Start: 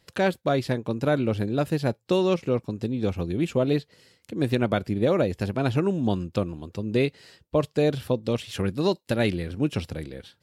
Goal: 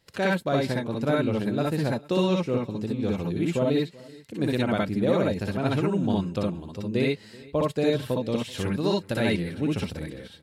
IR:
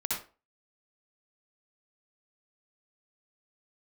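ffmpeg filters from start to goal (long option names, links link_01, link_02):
-filter_complex "[0:a]aecho=1:1:382:0.075[link_01];[1:a]atrim=start_sample=2205,atrim=end_sample=3087[link_02];[link_01][link_02]afir=irnorm=-1:irlink=0,volume=-2.5dB"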